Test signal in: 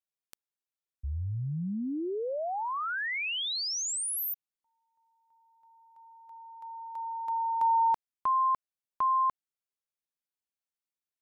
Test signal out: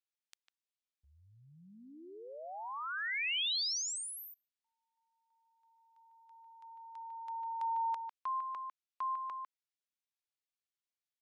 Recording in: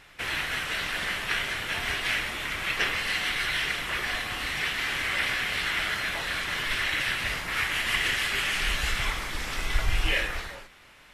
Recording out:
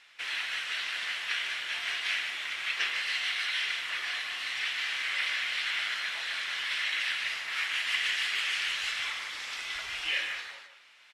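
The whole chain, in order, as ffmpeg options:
ffmpeg -i in.wav -filter_complex "[0:a]lowpass=3800,aderivative,asplit=2[link_01][link_02];[link_02]adelay=150,highpass=300,lowpass=3400,asoftclip=type=hard:threshold=-32dB,volume=-7dB[link_03];[link_01][link_03]amix=inputs=2:normalize=0,volume=7dB" out.wav

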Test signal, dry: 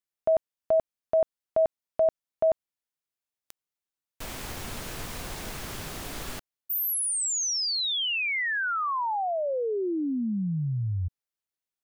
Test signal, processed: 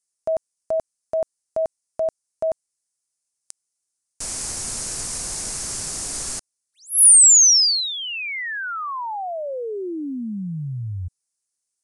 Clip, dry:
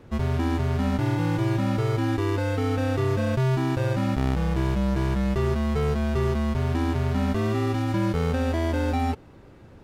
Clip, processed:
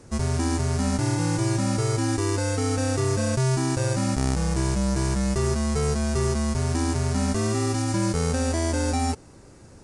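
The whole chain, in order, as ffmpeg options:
ffmpeg -i in.wav -af "aexciter=amount=6.1:drive=6.9:freq=4900,aresample=22050,aresample=44100" out.wav

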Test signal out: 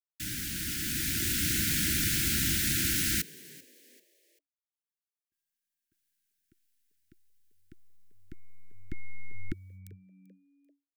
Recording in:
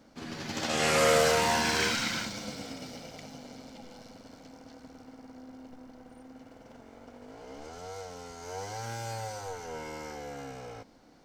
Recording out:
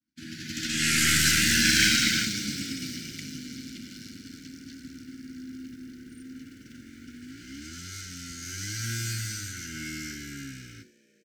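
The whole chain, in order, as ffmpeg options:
ffmpeg -i in.wav -filter_complex "[0:a]highpass=57,aeval=exprs='0.266*(cos(1*acos(clip(val(0)/0.266,-1,1)))-cos(1*PI/2))+0.0211*(cos(4*acos(clip(val(0)/0.266,-1,1)))-cos(4*PI/2))':channel_layout=same,highshelf=frequency=6900:gain=6.5,dynaudnorm=framelen=190:gausssize=11:maxgain=8dB,agate=range=-33dB:threshold=-42dB:ratio=3:detection=peak,asuperstop=centerf=710:order=20:qfactor=0.66,asplit=4[link_01][link_02][link_03][link_04];[link_02]adelay=390,afreqshift=94,volume=-21.5dB[link_05];[link_03]adelay=780,afreqshift=188,volume=-30.6dB[link_06];[link_04]adelay=1170,afreqshift=282,volume=-39.7dB[link_07];[link_01][link_05][link_06][link_07]amix=inputs=4:normalize=0" out.wav

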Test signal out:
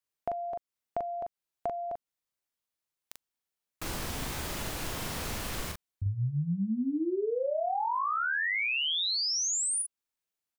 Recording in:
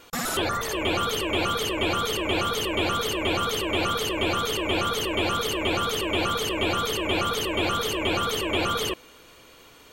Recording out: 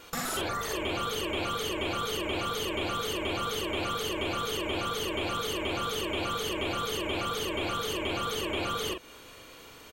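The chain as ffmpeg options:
ffmpeg -i in.wav -filter_complex "[0:a]acompressor=threshold=-34dB:ratio=2.5,asplit=2[link_01][link_02];[link_02]adelay=41,volume=-4dB[link_03];[link_01][link_03]amix=inputs=2:normalize=0" out.wav

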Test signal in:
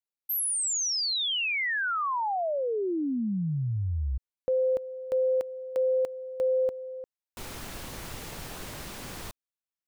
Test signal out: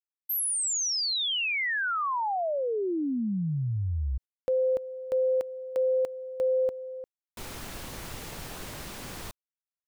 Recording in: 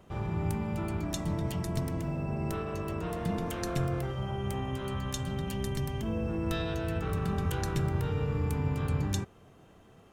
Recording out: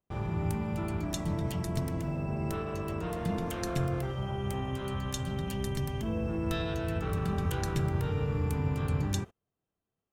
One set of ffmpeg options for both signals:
ffmpeg -i in.wav -af "agate=range=-32dB:threshold=-46dB:ratio=16:release=82:detection=rms" out.wav

